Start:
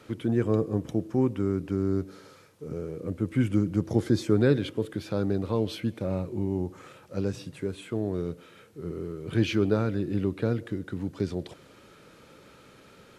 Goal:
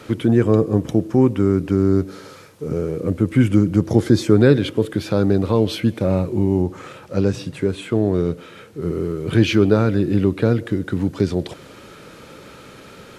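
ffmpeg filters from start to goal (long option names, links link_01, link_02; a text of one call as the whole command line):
ffmpeg -i in.wav -filter_complex "[0:a]asettb=1/sr,asplit=3[link_01][link_02][link_03];[link_01]atrim=end=6.624[link_04];[link_02]atrim=start=6.62:end=8.82,asetpts=PTS-STARTPTS,afade=type=in:duration=0.004:curve=qsin,afade=type=out:start_time=2.196:duration=0.004:curve=qsin,highshelf=frequency=8800:gain=-6.5[link_05];[link_03]atrim=start=8.816[link_06];[link_04][link_05]acrossfade=duration=0.004:curve1=hsin:curve2=qsin[link_07];[link_07][link_06]acrossfade=duration=0.004:curve1=qsin:curve2=hsin,asplit=2[link_08][link_09];[link_09]alimiter=limit=-21dB:level=0:latency=1:release=446,volume=-2.5dB[link_10];[link_08][link_10]amix=inputs=2:normalize=0,volume=7dB" out.wav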